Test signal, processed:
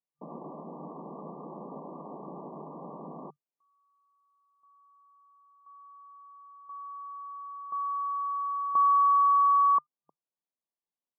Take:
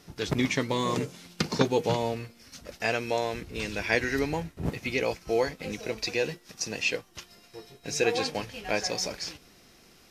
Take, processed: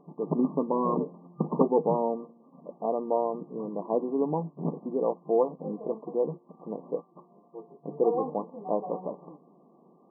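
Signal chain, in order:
brick-wall band-pass 140–1,200 Hz
level +2 dB

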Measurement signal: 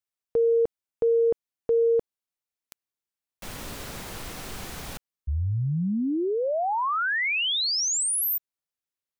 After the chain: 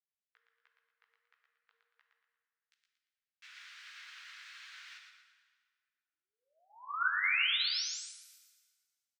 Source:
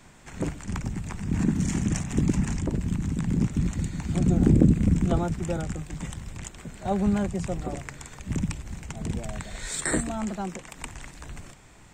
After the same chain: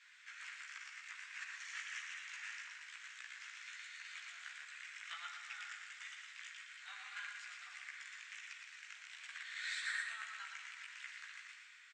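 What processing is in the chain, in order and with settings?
Butterworth high-pass 1,500 Hz 36 dB per octave
dynamic equaliser 7,200 Hz, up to −6 dB, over −45 dBFS, Q 0.71
brickwall limiter −28.5 dBFS
multi-voice chorus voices 2, 1.4 Hz, delay 16 ms, depth 3 ms
high-frequency loss of the air 160 metres
repeating echo 116 ms, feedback 37%, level −5 dB
dense smooth reverb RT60 1.8 s, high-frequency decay 0.8×, DRR 4.5 dB
expander for the loud parts 1.5 to 1, over −51 dBFS
level +5.5 dB

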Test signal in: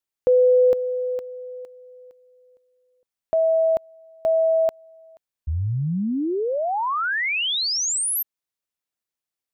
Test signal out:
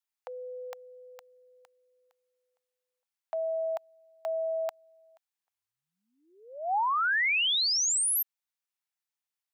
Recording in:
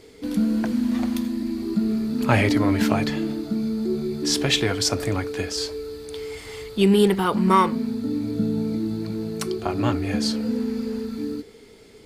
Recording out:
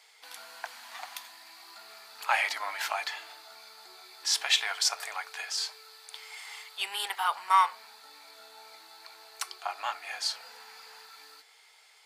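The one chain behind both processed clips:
Chebyshev high-pass filter 770 Hz, order 4
level −2.5 dB

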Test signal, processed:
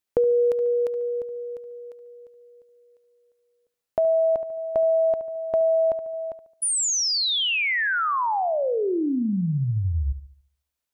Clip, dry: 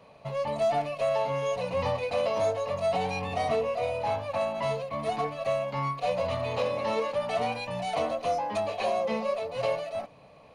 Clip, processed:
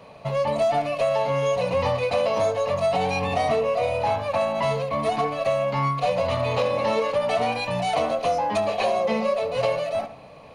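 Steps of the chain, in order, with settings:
feedback echo with a low-pass in the loop 72 ms, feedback 42%, low-pass 3,700 Hz, level −13 dB
downward compressor 2.5 to 1, threshold −28 dBFS
level +8 dB

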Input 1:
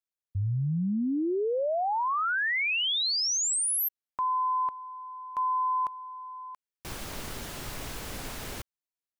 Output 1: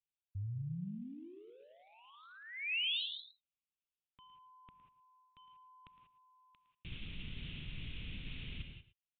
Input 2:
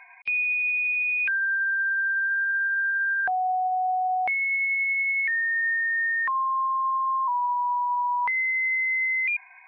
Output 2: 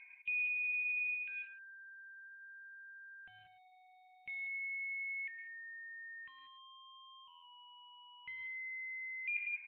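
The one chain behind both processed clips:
high-frequency loss of the air 300 metres
reverb whose tail is shaped and stops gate 210 ms rising, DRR 8 dB
in parallel at −11.5 dB: hard clipping −28.5 dBFS
on the sum: single-tap delay 111 ms −14.5 dB
reversed playback
downward compressor 12 to 1, threshold −35 dBFS
reversed playback
drawn EQ curve 170 Hz 0 dB, 780 Hz −26 dB, 1,700 Hz −14 dB, 2,600 Hz +6 dB
downsampling to 8,000 Hz
level −3 dB

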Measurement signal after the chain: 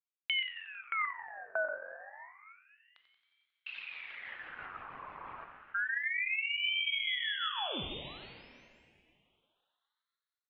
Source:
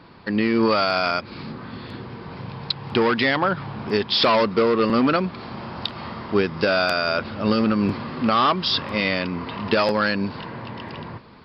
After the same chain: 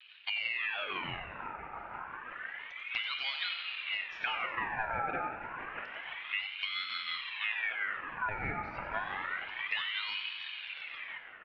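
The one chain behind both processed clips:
low-pass filter 1,400 Hz 24 dB per octave
reverb reduction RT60 0.78 s
downward compressor, threshold −26 dBFS
rotating-speaker cabinet horn 6 Hz
pitch vibrato 0.45 Hz 19 cents
on a send: echo with shifted repeats 90 ms, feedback 62%, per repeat +45 Hz, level −10.5 dB
on the sum: dense smooth reverb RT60 2.8 s, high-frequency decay 0.5×, DRR 6.5 dB
ring modulator whose carrier an LFO sweeps 1,900 Hz, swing 45%, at 0.29 Hz
level −3 dB

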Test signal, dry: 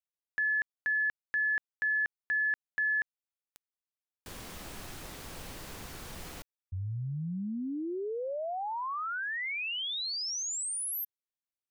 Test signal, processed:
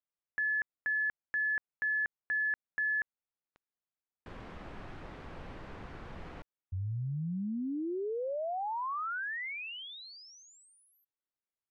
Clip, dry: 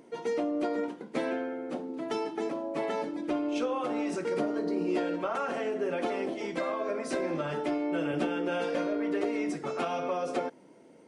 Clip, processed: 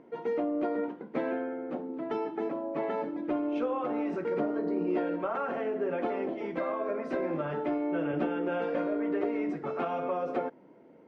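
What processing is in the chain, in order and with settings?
low-pass filter 1,900 Hz 12 dB per octave

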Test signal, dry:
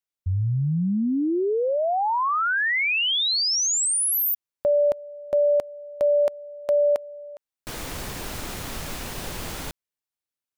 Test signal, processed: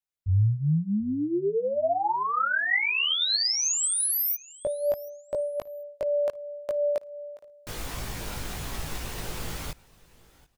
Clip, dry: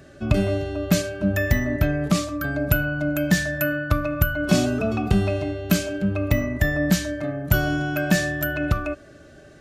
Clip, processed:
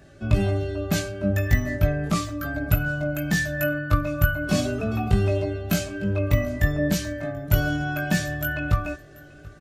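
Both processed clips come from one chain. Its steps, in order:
repeating echo 735 ms, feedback 22%, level −23 dB
multi-voice chorus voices 6, 0.34 Hz, delay 19 ms, depth 1.4 ms

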